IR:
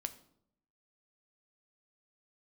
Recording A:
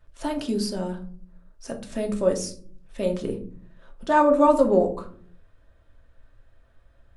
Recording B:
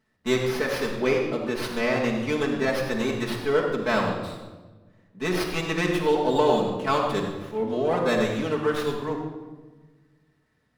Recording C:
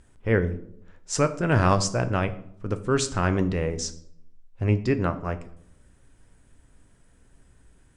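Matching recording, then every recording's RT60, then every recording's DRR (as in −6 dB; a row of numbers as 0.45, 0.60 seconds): C; 0.50, 1.3, 0.70 seconds; 2.5, −4.5, 9.5 decibels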